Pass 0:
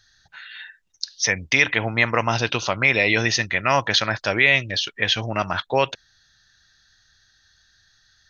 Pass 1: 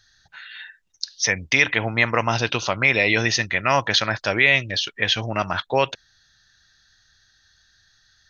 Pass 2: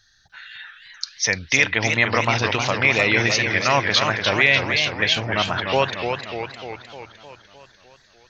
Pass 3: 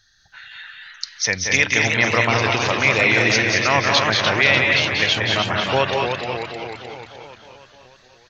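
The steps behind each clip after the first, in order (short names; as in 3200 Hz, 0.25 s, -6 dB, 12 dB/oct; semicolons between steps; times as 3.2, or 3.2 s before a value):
nothing audible
warbling echo 0.302 s, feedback 60%, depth 170 cents, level -6 dB
loudspeakers at several distances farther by 63 m -5 dB, 74 m -6 dB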